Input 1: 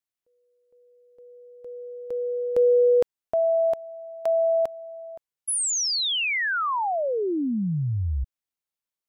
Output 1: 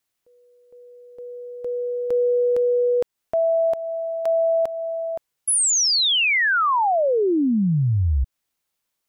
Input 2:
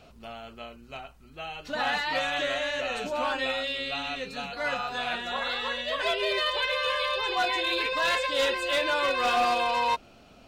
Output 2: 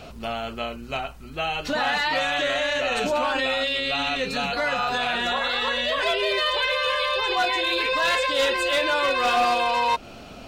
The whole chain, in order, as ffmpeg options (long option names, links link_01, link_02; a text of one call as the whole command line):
ffmpeg -i in.wav -filter_complex "[0:a]asplit=2[link_01][link_02];[link_02]acompressor=threshold=-35dB:ratio=6:attack=5.2:release=297:detection=peak,volume=-0.5dB[link_03];[link_01][link_03]amix=inputs=2:normalize=0,alimiter=limit=-22.5dB:level=0:latency=1:release=24,volume=6.5dB" out.wav